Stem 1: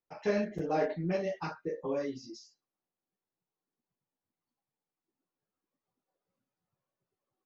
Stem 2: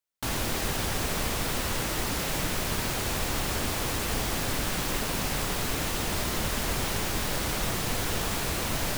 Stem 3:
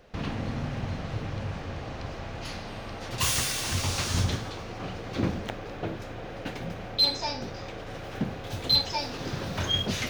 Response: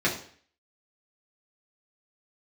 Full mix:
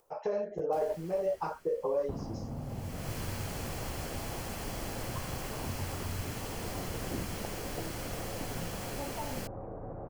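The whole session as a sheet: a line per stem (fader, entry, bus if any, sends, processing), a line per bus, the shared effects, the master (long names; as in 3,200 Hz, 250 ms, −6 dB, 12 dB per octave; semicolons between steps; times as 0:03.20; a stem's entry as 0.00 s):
−0.5 dB, 0.00 s, no send, brickwall limiter −24 dBFS, peak gain reduction 5 dB; downward compressor, threshold −34 dBFS, peak gain reduction 6 dB; graphic EQ with 10 bands 250 Hz −9 dB, 500 Hz +11 dB, 1,000 Hz +7 dB, 2,000 Hz −8 dB, 4,000 Hz −6 dB
−14.5 dB, 0.50 s, no send, notch filter 3,700 Hz, Q 8.8; automatic gain control gain up to 3 dB; automatic ducking −22 dB, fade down 1.70 s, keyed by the first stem
−2.0 dB, 1.95 s, no send, inverse Chebyshev low-pass filter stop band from 5,600 Hz, stop band 80 dB; downward compressor, threshold −33 dBFS, peak gain reduction 11 dB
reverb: not used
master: upward compression, threshold −55 dBFS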